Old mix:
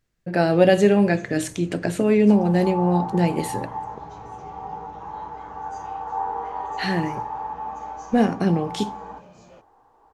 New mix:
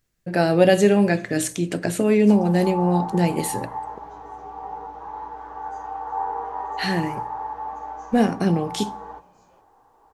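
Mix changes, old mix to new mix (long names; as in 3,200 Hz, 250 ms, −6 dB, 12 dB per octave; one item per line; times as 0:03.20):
first sound −12.0 dB
master: add high-shelf EQ 6,800 Hz +10 dB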